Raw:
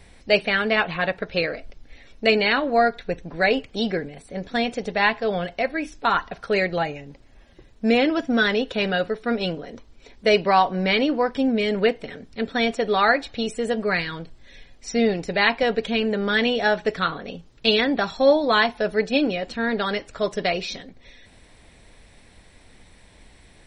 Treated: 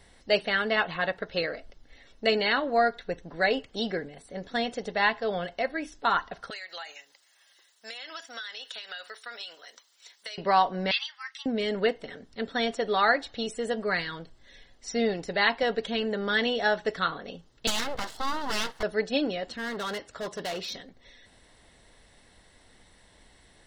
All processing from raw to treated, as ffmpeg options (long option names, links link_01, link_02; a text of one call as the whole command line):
ffmpeg -i in.wav -filter_complex "[0:a]asettb=1/sr,asplit=3[link_01][link_02][link_03];[link_01]atrim=end=6.504[link_04];[link_02]atrim=start=6.5:end=10.38,asetpts=PTS-STARTPTS,afade=type=in:duration=0.004:curve=qsin,afade=type=out:start_time=3.876:duration=0.004:curve=qsin,highpass=1200,aemphasis=mode=production:type=75kf,acompressor=threshold=-30dB:ratio=16:attack=3.2:release=140:knee=1:detection=peak[link_05];[link_03]atrim=start=10.376[link_06];[link_04][link_05]acrossfade=duration=0.004:curve1=hsin:curve2=qsin[link_07];[link_07][link_06]acrossfade=duration=0.004:curve1=qsin:curve2=hsin,asettb=1/sr,asplit=3[link_08][link_09][link_10];[link_08]atrim=end=10.914[link_11];[link_09]atrim=start=10.91:end=11.46,asetpts=PTS-STARTPTS,afade=type=in:duration=0.004:curve=qsin,afade=type=out:start_time=0.546:duration=0.004:curve=qsin,highpass=frequency=1400:width=0.5412,highpass=frequency=1400:width=1.3066,aecho=1:1:3.8:0.32,atrim=end_sample=24255,afreqshift=320[link_12];[link_10]atrim=start=11.456[link_13];[link_11][link_12]acrossfade=duration=0.004:curve1=hsin:curve2=qsin[link_14];[link_14][link_13]acrossfade=duration=0.004:curve1=qsin:curve2=hsin,asettb=1/sr,asplit=3[link_15][link_16][link_17];[link_15]atrim=end=17.674[link_18];[link_16]atrim=start=17.67:end=18.83,asetpts=PTS-STARTPTS,afade=type=in:duration=0.004:curve=qsin,afade=type=out:start_time=1.156:duration=0.004:curve=qsin,acrossover=split=140|3000[link_19][link_20][link_21];[link_20]acompressor=threshold=-19dB:ratio=2.5:attack=3.2:release=140:knee=2.83:detection=peak[link_22];[link_19][link_22][link_21]amix=inputs=3:normalize=0,aeval=exprs='abs(val(0))':channel_layout=same[link_23];[link_17]atrim=start=18.826[link_24];[link_18][link_23]acrossfade=duration=0.004:curve1=hsin:curve2=qsin[link_25];[link_25][link_24]acrossfade=duration=0.004:curve1=qsin:curve2=hsin,asettb=1/sr,asplit=3[link_26][link_27][link_28];[link_26]atrim=end=19.504[link_29];[link_27]atrim=start=19.5:end=20.75,asetpts=PTS-STARTPTS,afade=type=in:duration=0.004:curve=qsin,afade=type=out:start_time=1.246:duration=0.004:curve=qsin,highpass=49,asoftclip=type=hard:threshold=-25dB[link_30];[link_28]atrim=start=20.746[link_31];[link_29][link_30]acrossfade=duration=0.004:curve1=hsin:curve2=qsin[link_32];[link_32][link_31]acrossfade=duration=0.004:curve1=qsin:curve2=hsin,lowshelf=frequency=330:gain=-6,bandreject=frequency=2400:width=5.9,volume=-3.5dB" out.wav